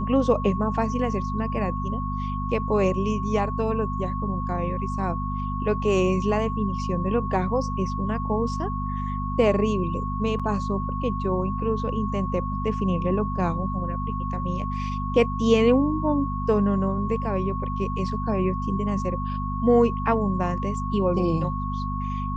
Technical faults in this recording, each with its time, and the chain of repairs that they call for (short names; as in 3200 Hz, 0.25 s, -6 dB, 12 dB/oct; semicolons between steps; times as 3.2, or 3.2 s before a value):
hum 50 Hz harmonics 5 -29 dBFS
tone 1100 Hz -31 dBFS
10.39–10.4 gap 6.3 ms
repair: notch 1100 Hz, Q 30; de-hum 50 Hz, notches 5; interpolate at 10.39, 6.3 ms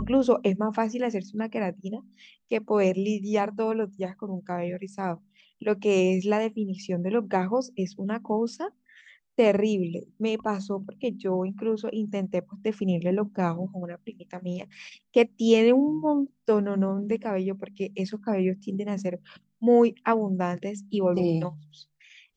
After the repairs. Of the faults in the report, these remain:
none